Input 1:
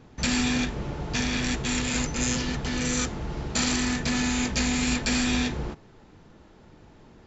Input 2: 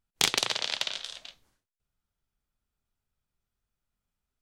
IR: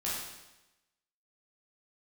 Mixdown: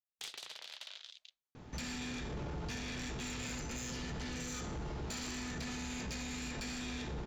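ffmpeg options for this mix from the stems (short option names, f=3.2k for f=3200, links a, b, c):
-filter_complex "[0:a]acompressor=threshold=-28dB:ratio=10,adelay=1550,volume=-2.5dB,asplit=2[a][b];[b]volume=-12dB[c];[1:a]afwtdn=0.00501,highpass=f=860:p=1,volume=-10.5dB[d];[2:a]atrim=start_sample=2205[e];[c][e]afir=irnorm=-1:irlink=0[f];[a][d][f]amix=inputs=3:normalize=0,asoftclip=type=tanh:threshold=-27dB,alimiter=level_in=11dB:limit=-24dB:level=0:latency=1:release=16,volume=-11dB"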